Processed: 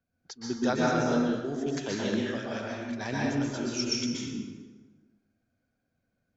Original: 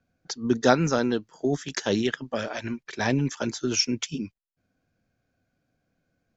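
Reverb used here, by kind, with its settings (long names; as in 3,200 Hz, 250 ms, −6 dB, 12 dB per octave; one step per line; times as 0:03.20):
dense smooth reverb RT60 1.4 s, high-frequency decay 0.65×, pre-delay 110 ms, DRR −5 dB
level −10.5 dB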